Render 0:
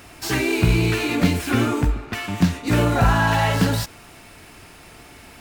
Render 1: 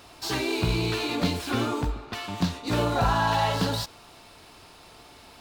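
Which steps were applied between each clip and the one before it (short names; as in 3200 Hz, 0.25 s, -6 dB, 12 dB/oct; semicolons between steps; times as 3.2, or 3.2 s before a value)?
graphic EQ 500/1000/2000/4000 Hz +4/+7/-4/+10 dB; gain -9 dB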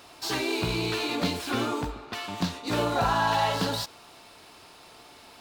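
low shelf 120 Hz -11 dB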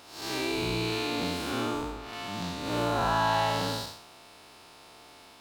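time blur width 0.197 s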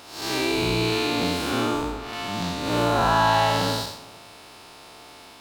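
reverb RT60 1.1 s, pre-delay 0.1 s, DRR 20 dB; gain +6.5 dB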